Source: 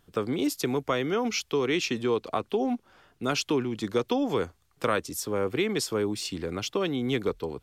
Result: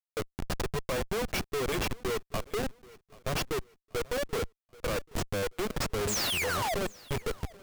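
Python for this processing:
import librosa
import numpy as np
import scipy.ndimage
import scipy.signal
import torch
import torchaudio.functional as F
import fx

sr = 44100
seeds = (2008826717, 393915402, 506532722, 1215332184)

y = fx.noise_reduce_blind(x, sr, reduce_db=10)
y = y + 0.97 * np.pad(y, (int(1.8 * sr / 1000.0), 0))[:len(y)]
y = fx.spec_paint(y, sr, seeds[0], shape='fall', start_s=6.07, length_s=0.68, low_hz=600.0, high_hz=8500.0, level_db=-26.0)
y = fx.schmitt(y, sr, flips_db=-25.0)
y = fx.echo_feedback(y, sr, ms=783, feedback_pct=37, wet_db=-22.0)
y = F.gain(torch.from_numpy(y), -2.5).numpy()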